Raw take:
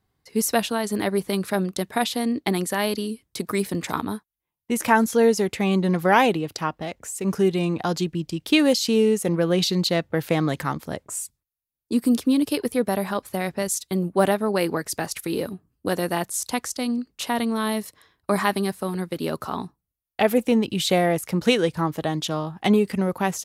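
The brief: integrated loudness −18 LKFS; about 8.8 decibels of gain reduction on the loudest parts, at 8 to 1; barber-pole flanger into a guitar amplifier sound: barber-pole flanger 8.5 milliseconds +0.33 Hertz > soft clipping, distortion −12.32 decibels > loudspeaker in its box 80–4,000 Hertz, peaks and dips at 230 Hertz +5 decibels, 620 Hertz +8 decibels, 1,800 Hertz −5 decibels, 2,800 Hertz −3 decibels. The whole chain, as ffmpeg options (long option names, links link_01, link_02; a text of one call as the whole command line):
ffmpeg -i in.wav -filter_complex "[0:a]acompressor=threshold=-22dB:ratio=8,asplit=2[link_01][link_02];[link_02]adelay=8.5,afreqshift=0.33[link_03];[link_01][link_03]amix=inputs=2:normalize=1,asoftclip=threshold=-26.5dB,highpass=80,equalizer=frequency=230:width_type=q:width=4:gain=5,equalizer=frequency=620:width_type=q:width=4:gain=8,equalizer=frequency=1800:width_type=q:width=4:gain=-5,equalizer=frequency=2800:width_type=q:width=4:gain=-3,lowpass=frequency=4000:width=0.5412,lowpass=frequency=4000:width=1.3066,volume=14dB" out.wav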